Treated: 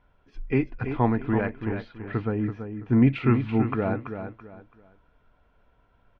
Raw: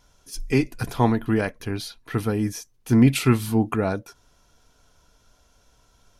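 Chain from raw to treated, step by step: low-pass 2.5 kHz 24 dB/octave; feedback delay 332 ms, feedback 29%, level -8.5 dB; 2.28–3.07 s: tape noise reduction on one side only decoder only; trim -3 dB

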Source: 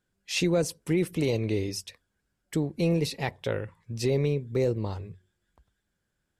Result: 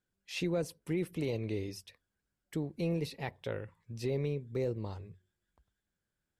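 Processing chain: dynamic bell 7 kHz, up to -7 dB, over -50 dBFS, Q 0.99; trim -8 dB

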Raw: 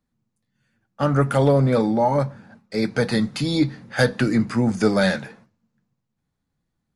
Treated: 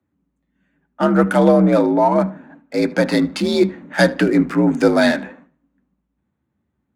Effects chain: local Wiener filter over 9 samples; vibrato 1.7 Hz 8.5 cents; frequency shift +56 Hz; on a send: tape echo 76 ms, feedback 34%, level -19 dB, low-pass 3.1 kHz; on the sum: trim +4.5 dB

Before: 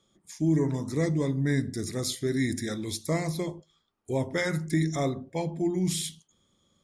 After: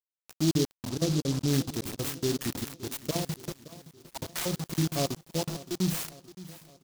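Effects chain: random holes in the spectrogram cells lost 42%; word length cut 6-bit, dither none; 0.89–1.48 s: Savitzky-Golay filter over 41 samples; on a send: feedback delay 569 ms, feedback 51%, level -17 dB; on the sum: delay time shaken by noise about 4.6 kHz, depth 0.14 ms

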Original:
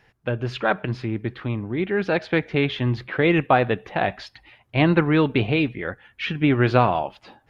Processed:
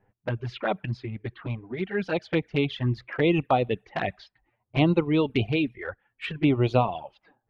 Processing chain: level-controlled noise filter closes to 860 Hz, open at -19 dBFS; reverb removal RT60 1 s; touch-sensitive flanger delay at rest 10.3 ms, full sweep at -17.5 dBFS; trim -1.5 dB

